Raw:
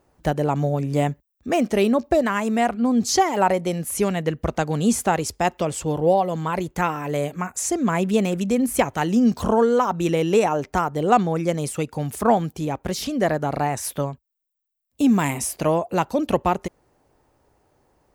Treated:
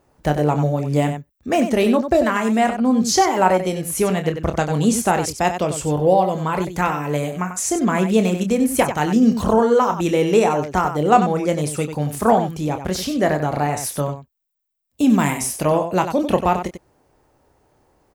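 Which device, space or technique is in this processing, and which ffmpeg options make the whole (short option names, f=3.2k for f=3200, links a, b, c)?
slapback doubling: -filter_complex "[0:a]asplit=3[a][b][c];[b]adelay=27,volume=-8.5dB[d];[c]adelay=94,volume=-9dB[e];[a][d][e]amix=inputs=3:normalize=0,volume=2dB"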